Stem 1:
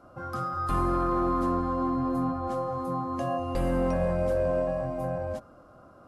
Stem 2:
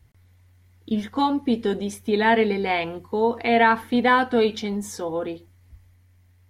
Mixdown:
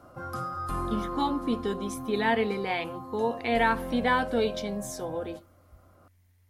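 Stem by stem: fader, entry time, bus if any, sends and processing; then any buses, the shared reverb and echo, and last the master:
+1.0 dB, 0.00 s, no send, auto duck -11 dB, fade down 1.40 s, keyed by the second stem
-7.0 dB, 0.00 s, no send, none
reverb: none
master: treble shelf 6.4 kHz +7.5 dB

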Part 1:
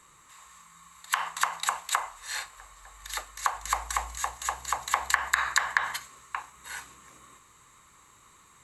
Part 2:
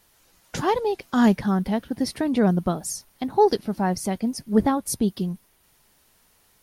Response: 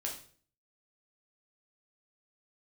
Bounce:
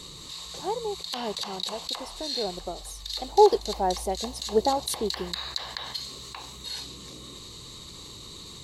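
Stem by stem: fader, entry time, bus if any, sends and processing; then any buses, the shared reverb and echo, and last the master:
-6.0 dB, 0.00 s, no send, FFT filter 430 Hz 0 dB, 1.5 kHz -25 dB, 2.4 kHz -18 dB, 4.3 kHz +1 dB, 7.2 kHz -20 dB; level flattener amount 70%
2.77 s -23 dB -> 3.43 s -14.5 dB, 0.00 s, no send, high-order bell 560 Hz +15 dB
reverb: none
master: treble shelf 2 kHz +10.5 dB

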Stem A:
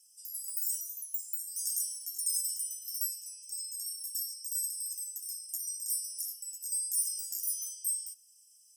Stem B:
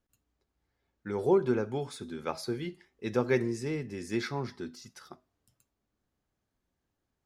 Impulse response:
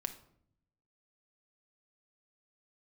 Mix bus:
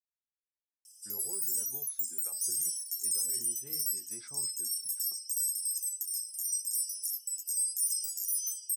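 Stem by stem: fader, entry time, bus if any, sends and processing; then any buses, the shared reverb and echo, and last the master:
0.0 dB, 0.85 s, no send, peaking EQ 9.4 kHz +6.5 dB 2.6 oct
-19.5 dB, 0.00 s, send -14.5 dB, de-hum 82.12 Hz, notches 20; gate with hold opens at -52 dBFS; peak limiter -24.5 dBFS, peak gain reduction 11 dB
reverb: on, RT60 0.65 s, pre-delay 5 ms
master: reverb removal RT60 0.67 s; peak limiter -22 dBFS, peak gain reduction 7.5 dB

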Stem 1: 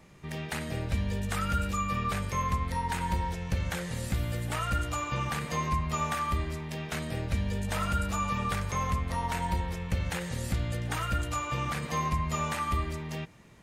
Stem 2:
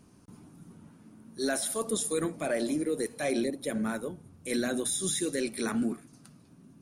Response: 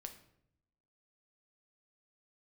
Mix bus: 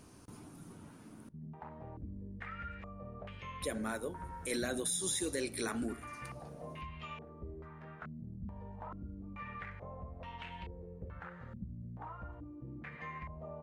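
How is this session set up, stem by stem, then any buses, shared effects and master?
-14.0 dB, 1.10 s, no send, step-sequenced low-pass 2.3 Hz 210–2900 Hz
+3.0 dB, 0.00 s, muted 1.29–3.62 s, send -10.5 dB, peaking EQ 190 Hz -7.5 dB 1.1 oct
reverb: on, RT60 0.70 s, pre-delay 7 ms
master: compression 1.5:1, threshold -47 dBFS, peak gain reduction 8.5 dB

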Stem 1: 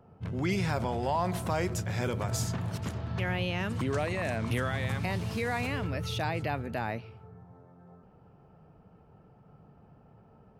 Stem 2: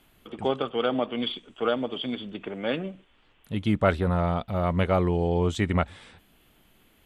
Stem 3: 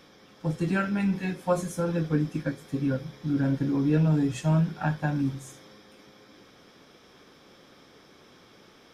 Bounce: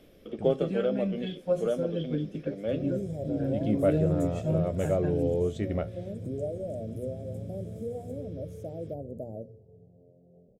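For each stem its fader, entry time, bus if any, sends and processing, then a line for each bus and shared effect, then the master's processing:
-11.0 dB, 2.45 s, no send, Chebyshev band-stop 620–7300 Hz, order 3; peaking EQ 85 Hz -5.5 dB 0.3 oct; hum notches 60/120/180/240/300/360/420/480/540 Hz
0.0 dB, 0.00 s, no send, feedback comb 73 Hz, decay 0.2 s, harmonics all, mix 60%; auto duck -10 dB, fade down 0.90 s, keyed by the third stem
-14.0 dB, 0.00 s, no send, peaking EQ 2.6 kHz +4.5 dB 0.95 oct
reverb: none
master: resonant low shelf 720 Hz +7.5 dB, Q 3

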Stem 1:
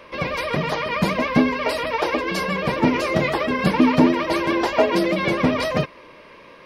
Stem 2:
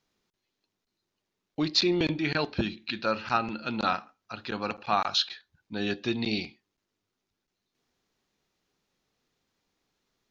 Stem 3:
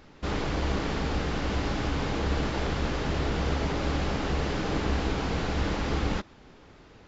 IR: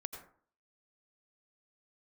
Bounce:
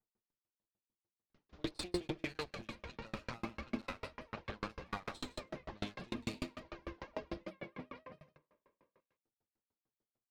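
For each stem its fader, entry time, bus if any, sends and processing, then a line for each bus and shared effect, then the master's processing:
-19.5 dB, 2.35 s, bus A, no send, echo send -13.5 dB, hum notches 50/100/150 Hz
-3.0 dB, 0.00 s, bus A, no send, echo send -15.5 dB, comb filter that takes the minimum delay 8.9 ms
-13.5 dB, 1.30 s, no bus, no send, no echo send, reverb removal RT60 1.7 s; steep low-pass 6.5 kHz
bus A: 0.0 dB, level-controlled noise filter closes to 980 Hz, open at -28.5 dBFS; peak limiter -23.5 dBFS, peak gain reduction 10.5 dB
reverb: none
echo: delay 166 ms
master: sawtooth tremolo in dB decaying 6.7 Hz, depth 37 dB

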